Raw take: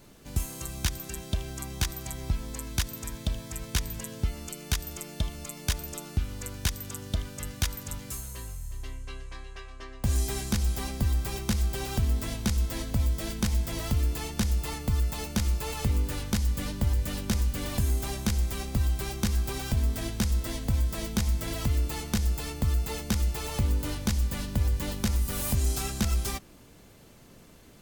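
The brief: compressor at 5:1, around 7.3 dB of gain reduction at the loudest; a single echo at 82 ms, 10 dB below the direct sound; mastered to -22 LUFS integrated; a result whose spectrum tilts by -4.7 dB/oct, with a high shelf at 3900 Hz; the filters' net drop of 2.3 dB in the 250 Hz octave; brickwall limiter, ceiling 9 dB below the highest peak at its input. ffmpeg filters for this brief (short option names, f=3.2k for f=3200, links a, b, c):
-af "equalizer=f=250:t=o:g=-3,highshelf=f=3.9k:g=-5.5,acompressor=threshold=-30dB:ratio=5,alimiter=level_in=3dB:limit=-24dB:level=0:latency=1,volume=-3dB,aecho=1:1:82:0.316,volume=15.5dB"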